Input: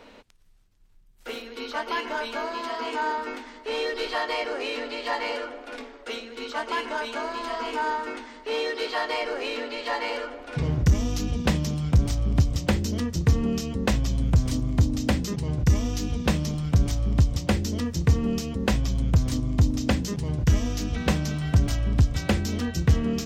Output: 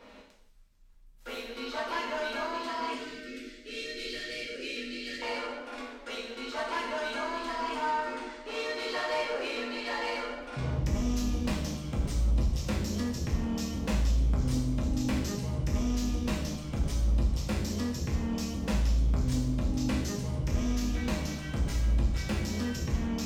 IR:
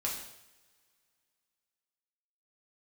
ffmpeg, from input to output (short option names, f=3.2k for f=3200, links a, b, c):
-filter_complex "[0:a]asoftclip=type=tanh:threshold=-24dB,asettb=1/sr,asplit=3[a][b][c];[a]atrim=end=2.944[d];[b]atrim=start=2.94:end=5.22,asetpts=PTS-STARTPTS,afade=t=in:d=0.004:c=qsin,afade=t=out:st=2.276:d=0.004:c=qsin,asuperstop=centerf=920:order=4:qfactor=0.53[e];[c]atrim=start=5.216[f];[d][e]acrossfade=d=0.004:c1=hsin:c2=qsin[g];[g][f]acrossfade=d=0.004:c1=qsin:c2=hsin[h];[1:a]atrim=start_sample=2205,afade=t=out:st=0.35:d=0.01,atrim=end_sample=15876[i];[h][i]afir=irnorm=-1:irlink=0,volume=-5dB"